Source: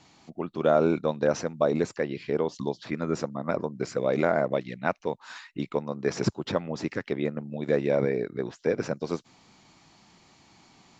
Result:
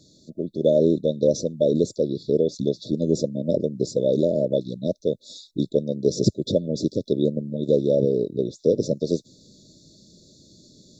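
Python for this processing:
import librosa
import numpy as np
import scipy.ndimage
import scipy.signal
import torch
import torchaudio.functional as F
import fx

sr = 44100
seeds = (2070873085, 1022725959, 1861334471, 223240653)

p1 = fx.rider(x, sr, range_db=3, speed_s=0.5)
p2 = x + (p1 * librosa.db_to_amplitude(0.0))
y = fx.brickwall_bandstop(p2, sr, low_hz=640.0, high_hz=3400.0)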